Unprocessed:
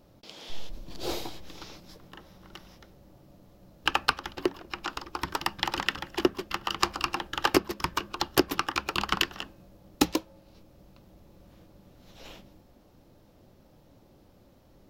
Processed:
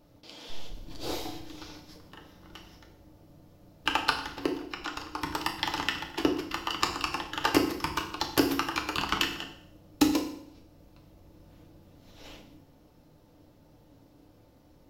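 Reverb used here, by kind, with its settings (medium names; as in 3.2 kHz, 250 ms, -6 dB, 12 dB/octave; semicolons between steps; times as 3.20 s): FDN reverb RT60 0.66 s, low-frequency decay 1.25×, high-frequency decay 0.95×, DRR 2 dB; trim -3 dB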